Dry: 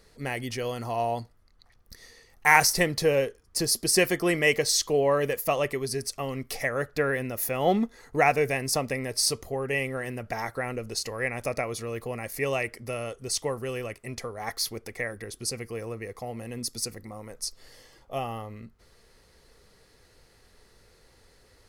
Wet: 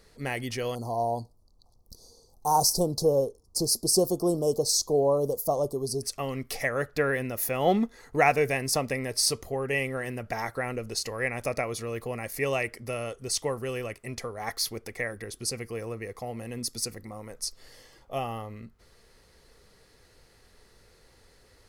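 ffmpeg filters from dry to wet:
-filter_complex "[0:a]asettb=1/sr,asplit=3[a][b][c];[a]atrim=end=0.754[d];[b]atrim=start=0.75:end=6.03,asetpts=PTS-STARTPTS,afade=t=in:d=0.004:c=qsin,afade=t=out:st=5.276:d=0.004:c=qsin,asuperstop=centerf=2100:order=8:qfactor=0.62[e];[c]atrim=start=6.026[f];[d][e]acrossfade=d=0.004:c1=hsin:c2=qsin[g];[g][f]acrossfade=d=0.004:c1=qsin:c2=hsin"

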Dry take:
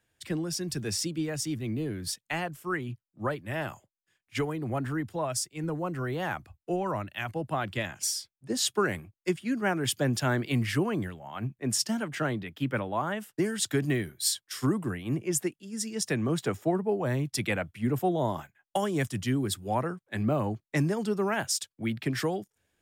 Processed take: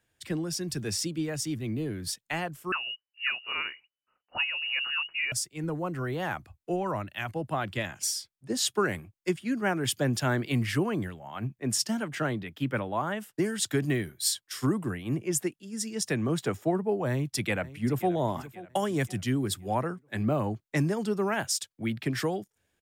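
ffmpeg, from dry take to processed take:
-filter_complex "[0:a]asettb=1/sr,asplit=3[a][b][c];[a]atrim=end=2.724[d];[b]atrim=start=2.72:end=5.32,asetpts=PTS-STARTPTS,afade=t=in:d=0.004:c=qsin,afade=t=out:st=2.596:d=0.004:c=qsin,lowpass=f=2.6k:t=q:w=0.5098,lowpass=f=2.6k:t=q:w=0.6013,lowpass=f=2.6k:t=q:w=0.9,lowpass=f=2.6k:t=q:w=2.563,afreqshift=-3000[e];[c]atrim=start=5.316[f];[d][e]acrossfade=d=0.004:c1=hsin:c2=qsin[g];[g][f]acrossfade=d=0.004:c1=qsin:c2=hsin,asplit=2[h][i];[i]afade=t=in:st=17.1:d=0.01,afade=t=out:st=18.12:d=0.01,aecho=0:1:530|1060|1590|2120:0.141254|0.0635642|0.0286039|0.0128717[j];[h][j]amix=inputs=2:normalize=0"

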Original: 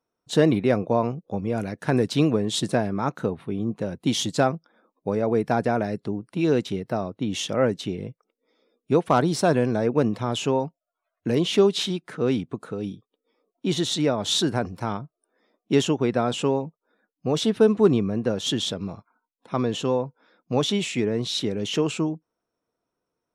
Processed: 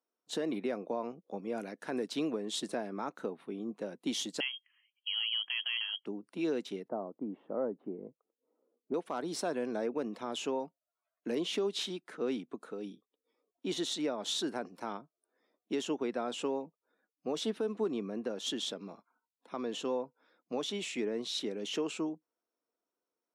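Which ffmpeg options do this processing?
-filter_complex "[0:a]asettb=1/sr,asplit=3[a][b][c];[a]atrim=end=4.404[d];[b]atrim=start=4.4:end=6.06,asetpts=PTS-STARTPTS,afade=t=in:d=0.004:c=qsin,afade=t=out:st=1.656:d=0.004:c=qsin,lowpass=f=2.9k:t=q:w=0.5098,lowpass=f=2.9k:t=q:w=0.6013,lowpass=f=2.9k:t=q:w=0.9,lowpass=f=2.9k:t=q:w=2.563,afreqshift=-3400[e];[c]atrim=start=6.056[f];[d][e]acrossfade=d=0.004:c1=hsin:c2=qsin[g];[g][f]acrossfade=d=0.004:c1=qsin:c2=hsin,asettb=1/sr,asplit=3[h][i][j];[h]atrim=end=6.884[k];[i]atrim=start=6.88:end=8.94,asetpts=PTS-STARTPTS,afade=t=in:d=0.004:c=qsin,afade=t=out:st=2.056:d=0.004:c=qsin,lowpass=f=1.1k:w=0.5412,lowpass=f=1.1k:w=1.3066[l];[j]atrim=start=8.936[m];[k][l]acrossfade=d=0.004:c1=hsin:c2=qsin[n];[n][m]acrossfade=d=0.004:c1=qsin:c2=hsin,highpass=f=230:w=0.5412,highpass=f=230:w=1.3066,alimiter=limit=-15.5dB:level=0:latency=1:release=192,volume=-9dB"

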